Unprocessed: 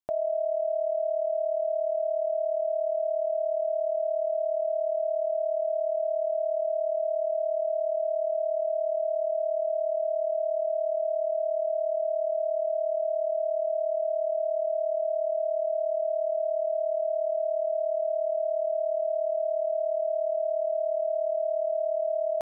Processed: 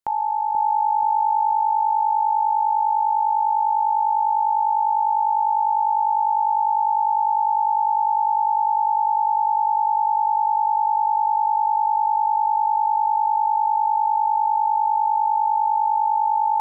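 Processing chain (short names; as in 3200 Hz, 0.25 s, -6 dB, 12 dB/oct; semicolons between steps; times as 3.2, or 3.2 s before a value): on a send: dark delay 0.652 s, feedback 54%, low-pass 590 Hz, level -3.5 dB; on the sum: speed mistake 33 rpm record played at 45 rpm; gain +5 dB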